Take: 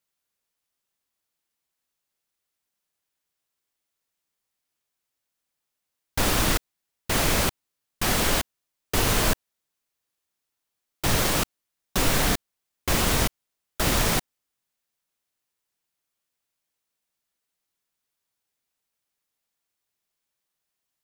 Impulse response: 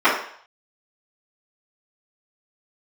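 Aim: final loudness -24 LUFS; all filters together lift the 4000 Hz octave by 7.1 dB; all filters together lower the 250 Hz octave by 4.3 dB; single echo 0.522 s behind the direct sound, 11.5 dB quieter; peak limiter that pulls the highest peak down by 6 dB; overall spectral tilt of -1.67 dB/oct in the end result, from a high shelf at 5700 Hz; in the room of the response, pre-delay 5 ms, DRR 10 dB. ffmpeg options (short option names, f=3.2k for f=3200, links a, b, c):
-filter_complex "[0:a]equalizer=f=250:t=o:g=-6,equalizer=f=4k:t=o:g=7,highshelf=f=5.7k:g=5,alimiter=limit=-12dB:level=0:latency=1,aecho=1:1:522:0.266,asplit=2[a][b];[1:a]atrim=start_sample=2205,adelay=5[c];[b][c]afir=irnorm=-1:irlink=0,volume=-34dB[d];[a][d]amix=inputs=2:normalize=0,volume=-0.5dB"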